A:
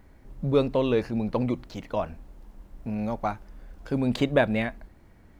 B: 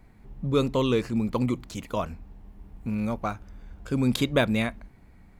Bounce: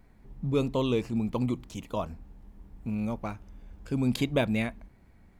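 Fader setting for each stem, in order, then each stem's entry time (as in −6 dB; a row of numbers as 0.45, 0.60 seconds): −10.5, −5.5 decibels; 0.00, 0.00 seconds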